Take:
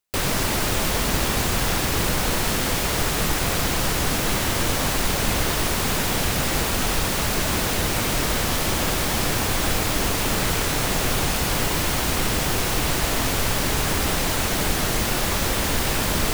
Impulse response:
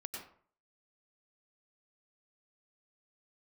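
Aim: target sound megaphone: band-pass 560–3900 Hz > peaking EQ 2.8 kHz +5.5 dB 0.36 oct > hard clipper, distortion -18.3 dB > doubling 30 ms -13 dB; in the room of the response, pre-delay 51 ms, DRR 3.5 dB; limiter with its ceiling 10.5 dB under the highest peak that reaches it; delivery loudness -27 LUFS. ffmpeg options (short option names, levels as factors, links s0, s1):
-filter_complex "[0:a]alimiter=limit=0.126:level=0:latency=1,asplit=2[s0][s1];[1:a]atrim=start_sample=2205,adelay=51[s2];[s1][s2]afir=irnorm=-1:irlink=0,volume=0.794[s3];[s0][s3]amix=inputs=2:normalize=0,highpass=560,lowpass=3900,equalizer=f=2800:t=o:w=0.36:g=5.5,asoftclip=type=hard:threshold=0.0562,asplit=2[s4][s5];[s5]adelay=30,volume=0.224[s6];[s4][s6]amix=inputs=2:normalize=0,volume=1.26"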